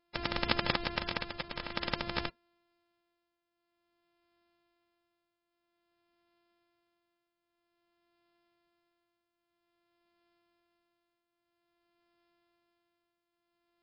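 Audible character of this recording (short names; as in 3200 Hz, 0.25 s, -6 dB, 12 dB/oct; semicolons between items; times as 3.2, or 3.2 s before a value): a buzz of ramps at a fixed pitch in blocks of 128 samples; tremolo triangle 0.51 Hz, depth 75%; MP3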